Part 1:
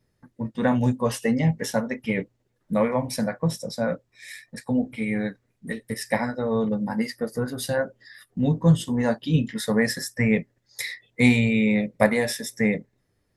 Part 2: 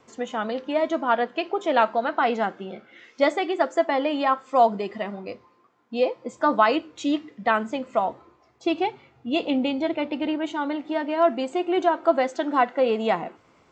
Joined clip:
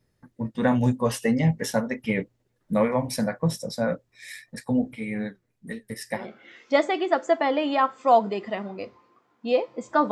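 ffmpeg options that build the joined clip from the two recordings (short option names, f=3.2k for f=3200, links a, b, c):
-filter_complex "[0:a]asplit=3[a][b][c];[a]afade=t=out:st=4.93:d=0.02[d];[b]flanger=delay=4.1:depth=2.8:regen=82:speed=1.9:shape=triangular,afade=t=in:st=4.93:d=0.02,afade=t=out:st=6.29:d=0.02[e];[c]afade=t=in:st=6.29:d=0.02[f];[d][e][f]amix=inputs=3:normalize=0,apad=whole_dur=10.11,atrim=end=10.11,atrim=end=6.29,asetpts=PTS-STARTPTS[g];[1:a]atrim=start=2.59:end=6.59,asetpts=PTS-STARTPTS[h];[g][h]acrossfade=d=0.18:c1=tri:c2=tri"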